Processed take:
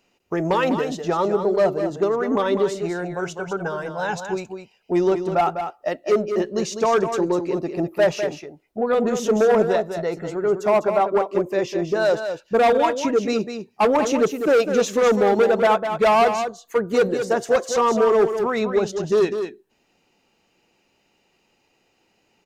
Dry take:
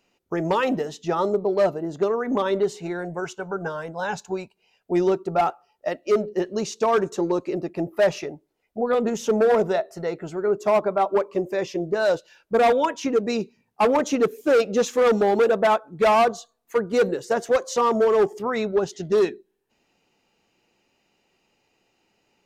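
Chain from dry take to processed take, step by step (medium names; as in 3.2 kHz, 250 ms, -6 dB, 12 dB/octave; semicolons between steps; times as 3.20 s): in parallel at -9.5 dB: saturation -21 dBFS, distortion -11 dB; on the sum: delay 201 ms -8 dB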